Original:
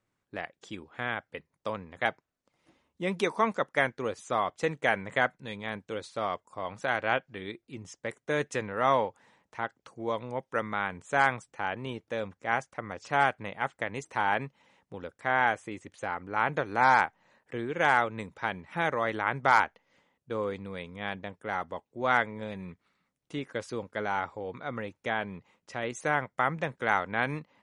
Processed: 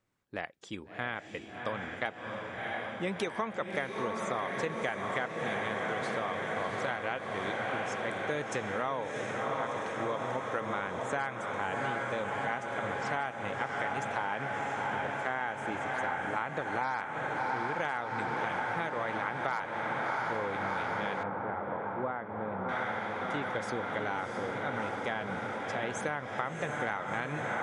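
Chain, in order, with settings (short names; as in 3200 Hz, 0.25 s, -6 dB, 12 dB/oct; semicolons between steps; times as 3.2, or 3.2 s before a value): on a send: diffused feedback echo 0.685 s, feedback 76%, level -5 dB; on the sum: compressor 10:1, threshold -29 dBFS, peak gain reduction 13.5 dB; 21.23–22.69 LPF 1200 Hz 12 dB/oct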